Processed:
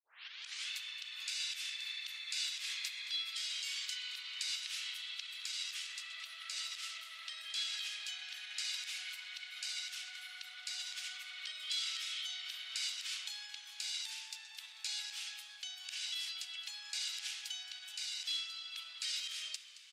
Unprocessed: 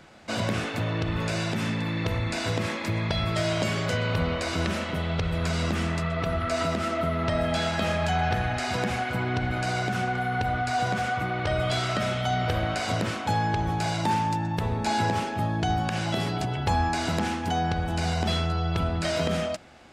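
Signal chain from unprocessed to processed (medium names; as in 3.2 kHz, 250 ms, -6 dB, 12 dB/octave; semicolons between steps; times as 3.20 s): tape start-up on the opening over 0.69 s; peak limiter -21.5 dBFS, peak gain reduction 8.5 dB; ladder high-pass 2.6 kHz, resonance 25%; frequency-shifting echo 221 ms, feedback 56%, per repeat -63 Hz, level -15.5 dB; trim +5 dB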